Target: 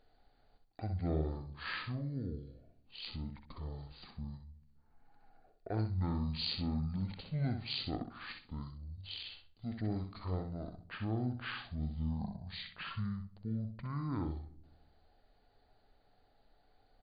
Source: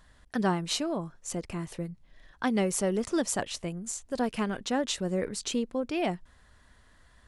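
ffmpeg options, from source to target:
-filter_complex "[0:a]highshelf=f=6.1k:g=-10.5,asplit=2[a][b];[b]adelay=62,lowpass=f=1k:p=1,volume=-18dB,asplit=2[c][d];[d]adelay=62,lowpass=f=1k:p=1,volume=0.55,asplit=2[e][f];[f]adelay=62,lowpass=f=1k:p=1,volume=0.55,asplit=2[g][h];[h]adelay=62,lowpass=f=1k:p=1,volume=0.55,asplit=2[i][j];[j]adelay=62,lowpass=f=1k:p=1,volume=0.55[k];[c][e][g][i][k]amix=inputs=5:normalize=0[l];[a][l]amix=inputs=2:normalize=0,asetrate=18846,aresample=44100,equalizer=f=4.5k:t=o:w=0.47:g=14.5,asplit=2[m][n];[n]aecho=0:1:64|128|192:0.447|0.0893|0.0179[o];[m][o]amix=inputs=2:normalize=0,volume=-9dB"

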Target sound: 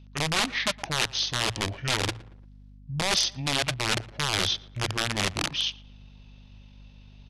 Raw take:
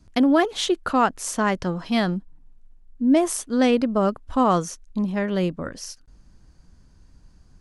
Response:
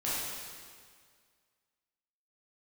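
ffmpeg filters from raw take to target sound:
-filter_complex "[0:a]highshelf=f=2.1k:g=-6,bandreject=f=50:t=h:w=6,bandreject=f=100:t=h:w=6,bandreject=f=150:t=h:w=6,bandreject=f=200:t=h:w=6,asetrate=45938,aresample=44100,highpass=74,areverse,acompressor=threshold=-30dB:ratio=12,areverse,aeval=exprs='(mod(23.7*val(0)+1,2)-1)/23.7':c=same,asetrate=24046,aresample=44100,atempo=1.83401,equalizer=f=3.8k:w=0.46:g=14,asplit=2[a][b];[b]adelay=115,lowpass=f=2k:p=1,volume=-19.5dB,asplit=2[c][d];[d]adelay=115,lowpass=f=2k:p=1,volume=0.44,asplit=2[e][f];[f]adelay=115,lowpass=f=2k:p=1,volume=0.44[g];[c][e][g]amix=inputs=3:normalize=0[h];[a][h]amix=inputs=2:normalize=0,aeval=exprs='val(0)+0.00316*(sin(2*PI*50*n/s)+sin(2*PI*2*50*n/s)/2+sin(2*PI*3*50*n/s)/3+sin(2*PI*4*50*n/s)/4+sin(2*PI*5*50*n/s)/5)':c=same,volume=2dB"

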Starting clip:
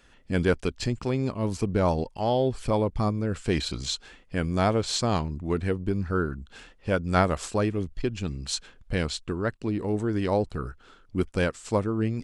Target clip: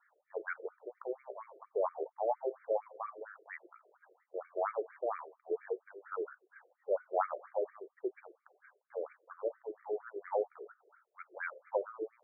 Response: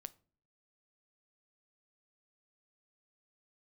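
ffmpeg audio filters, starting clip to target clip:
-filter_complex "[0:a]aemphasis=mode=reproduction:type=75kf[a];[1:a]atrim=start_sample=2205[b];[a][b]afir=irnorm=-1:irlink=0,afftfilt=real='re*between(b*sr/1024,480*pow(1700/480,0.5+0.5*sin(2*PI*4.3*pts/sr))/1.41,480*pow(1700/480,0.5+0.5*sin(2*PI*4.3*pts/sr))*1.41)':imag='im*between(b*sr/1024,480*pow(1700/480,0.5+0.5*sin(2*PI*4.3*pts/sr))/1.41,480*pow(1700/480,0.5+0.5*sin(2*PI*4.3*pts/sr))*1.41)':win_size=1024:overlap=0.75,volume=1.5dB"

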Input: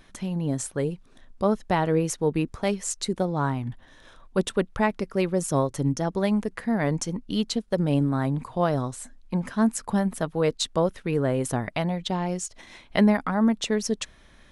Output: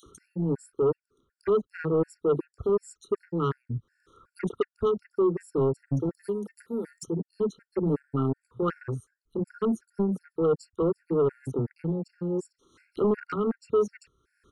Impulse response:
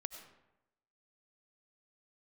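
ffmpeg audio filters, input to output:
-filter_complex "[0:a]highpass=59,asplit=2[a][b];[b]acompressor=threshold=-39dB:ratio=5,volume=-1.5dB[c];[a][c]amix=inputs=2:normalize=0,firequalizer=gain_entry='entry(110,0);entry(210,-4);entry(420,9);entry(680,-29);entry(1300,7);entry(1800,-11);entry(5500,-4)':delay=0.05:min_phase=1,acrossover=split=230|3300[d][e][f];[e]adelay=30[g];[d]adelay=60[h];[h][g][f]amix=inputs=3:normalize=0,afwtdn=0.0251,asettb=1/sr,asplit=3[i][j][k];[i]atrim=end=6.094[l];[j]atrim=start=6.09:end=7.06,asetpts=PTS-STARTPTS,afade=t=in:d=0.004:c=qsin,afade=t=out:st=0.966:d=0.004:c=qsin,aemphasis=mode=production:type=riaa[m];[k]atrim=start=7.056[n];[l][m]acrossfade=d=0.004:c1=hsin:c2=qsin[o];[o][n]acrossfade=d=0.004:c1=qsin:c2=hsin,asoftclip=type=tanh:threshold=-20.5dB,acompressor=mode=upward:threshold=-43dB:ratio=2.5,afftfilt=real='re*gt(sin(2*PI*2.7*pts/sr)*(1-2*mod(floor(b*sr/1024/1400),2)),0)':imag='im*gt(sin(2*PI*2.7*pts/sr)*(1-2*mod(floor(b*sr/1024/1400),2)),0)':win_size=1024:overlap=0.75,volume=2.5dB"

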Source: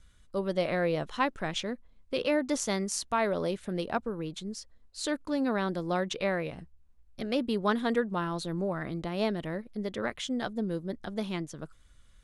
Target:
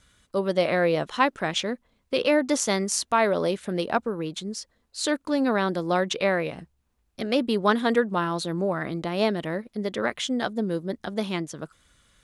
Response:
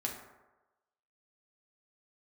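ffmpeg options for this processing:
-af "highpass=f=190:p=1,volume=7dB"

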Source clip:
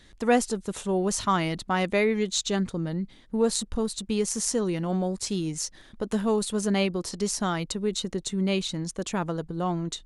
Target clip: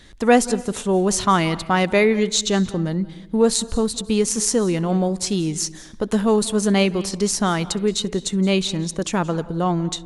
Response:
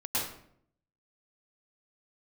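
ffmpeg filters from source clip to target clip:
-filter_complex "[0:a]asplit=2[a][b];[1:a]atrim=start_sample=2205,adelay=66[c];[b][c]afir=irnorm=-1:irlink=0,volume=-24.5dB[d];[a][d]amix=inputs=2:normalize=0,volume=7dB"

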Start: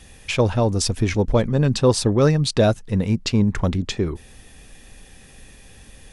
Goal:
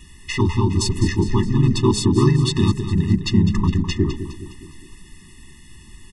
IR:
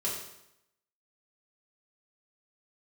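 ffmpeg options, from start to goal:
-filter_complex "[0:a]asplit=2[a][b];[b]aecho=0:1:206|412|618|824|1030:0.282|0.144|0.0733|0.0374|0.0191[c];[a][c]amix=inputs=2:normalize=0,asplit=2[d][e];[e]asetrate=37084,aresample=44100,atempo=1.18921,volume=-1dB[f];[d][f]amix=inputs=2:normalize=0,bandreject=f=207.1:t=h:w=4,bandreject=f=414.2:t=h:w=4,bandreject=f=621.3:t=h:w=4,afftfilt=real='re*eq(mod(floor(b*sr/1024/420),2),0)':imag='im*eq(mod(floor(b*sr/1024/420),2),0)':win_size=1024:overlap=0.75"

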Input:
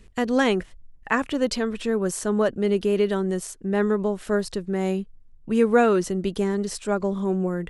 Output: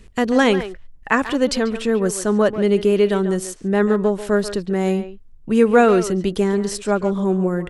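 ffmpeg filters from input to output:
-filter_complex "[0:a]asplit=2[a][b];[b]adelay=140,highpass=300,lowpass=3.4k,asoftclip=type=hard:threshold=-15.5dB,volume=-11dB[c];[a][c]amix=inputs=2:normalize=0,volume=5dB"

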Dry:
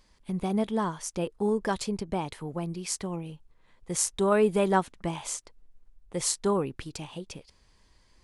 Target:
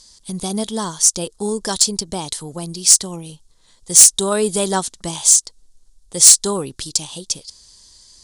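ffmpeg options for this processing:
-af "aexciter=amount=7.9:drive=7.3:freq=3.6k,lowpass=f=10k:w=0.5412,lowpass=f=10k:w=1.3066,acontrast=21,volume=-1dB"

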